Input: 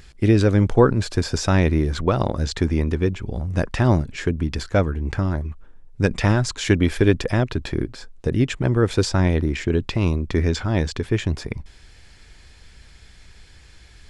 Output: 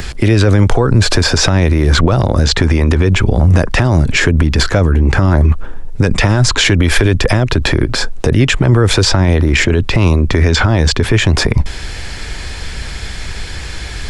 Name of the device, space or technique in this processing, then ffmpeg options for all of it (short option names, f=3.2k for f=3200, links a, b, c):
mastering chain: -filter_complex "[0:a]equalizer=f=760:t=o:w=2.5:g=2.5,acrossover=split=130|580|4700[a][b][c][d];[a]acompressor=threshold=-24dB:ratio=4[e];[b]acompressor=threshold=-27dB:ratio=4[f];[c]acompressor=threshold=-30dB:ratio=4[g];[d]acompressor=threshold=-41dB:ratio=4[h];[e][f][g][h]amix=inputs=4:normalize=0,acompressor=threshold=-25dB:ratio=2,asoftclip=type=hard:threshold=-14dB,alimiter=level_in=24dB:limit=-1dB:release=50:level=0:latency=1,volume=-1dB"